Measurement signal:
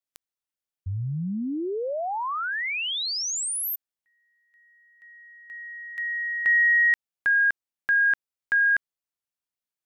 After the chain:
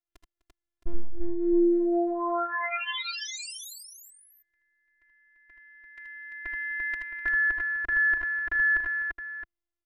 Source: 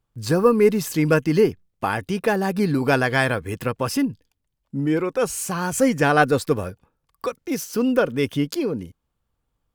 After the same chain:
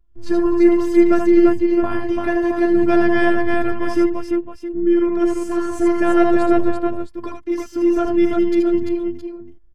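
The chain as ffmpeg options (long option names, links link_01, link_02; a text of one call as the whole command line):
ffmpeg -i in.wav -af "aemphasis=mode=reproduction:type=riaa,afftfilt=real='hypot(re,im)*cos(PI*b)':imag='0':win_size=512:overlap=0.75,aecho=1:1:69|78|79|252|342|667:0.178|0.335|0.501|0.119|0.668|0.299,volume=1dB" out.wav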